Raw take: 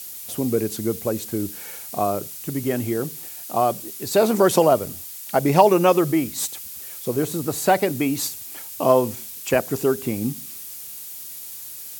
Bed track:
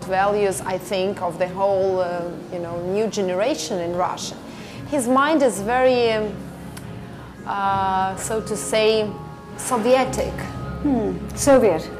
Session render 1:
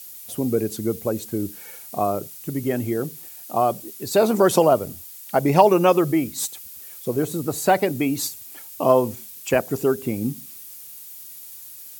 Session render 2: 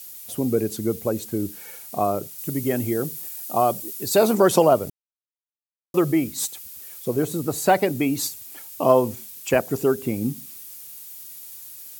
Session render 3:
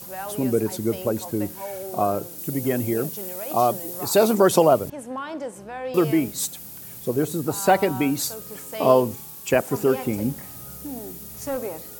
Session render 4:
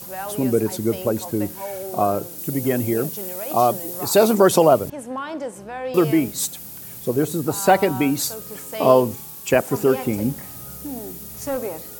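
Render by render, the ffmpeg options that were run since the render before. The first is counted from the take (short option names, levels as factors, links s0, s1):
-af "afftdn=nr=6:nf=-37"
-filter_complex "[0:a]asettb=1/sr,asplit=3[s0][s1][s2];[s0]atrim=end=2.384[s3];[s1]atrim=start=2.38:end=4.35,asetpts=PTS-STARTPTS,afade=t=in:d=0.004:c=qsin,afade=t=out:st=1.966:d=0.004:c=qsin,highshelf=f=5400:g=6[s4];[s2]atrim=start=4.346[s5];[s3][s4]acrossfade=d=0.004:c1=hsin:c2=qsin[s6];[s6][s5]acrossfade=d=0.004:c1=qsin:c2=hsin,asplit=3[s7][s8][s9];[s7]atrim=end=4.9,asetpts=PTS-STARTPTS,afade=t=out:st=4.896:d=0.004:c=hsin[s10];[s8]atrim=start=4.9:end=5.94,asetpts=PTS-STARTPTS,volume=0[s11];[s9]atrim=start=5.94,asetpts=PTS-STARTPTS,afade=t=in:d=0.004:c=hsin[s12];[s10][s11][s12]concat=n=3:v=0:a=1"
-filter_complex "[1:a]volume=0.178[s0];[0:a][s0]amix=inputs=2:normalize=0"
-af "volume=1.33,alimiter=limit=0.794:level=0:latency=1"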